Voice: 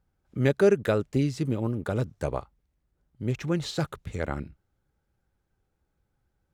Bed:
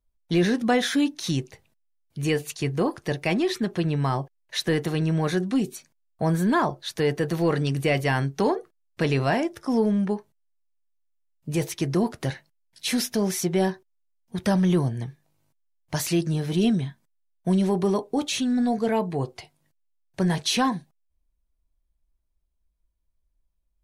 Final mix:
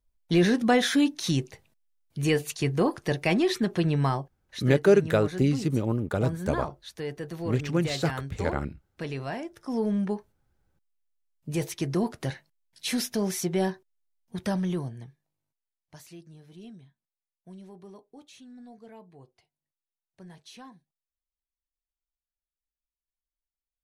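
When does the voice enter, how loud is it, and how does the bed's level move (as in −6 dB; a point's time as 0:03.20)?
4.25 s, +1.5 dB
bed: 0:04.07 0 dB
0:04.37 −11 dB
0:09.47 −11 dB
0:09.95 −3.5 dB
0:14.26 −3.5 dB
0:16.24 −24.5 dB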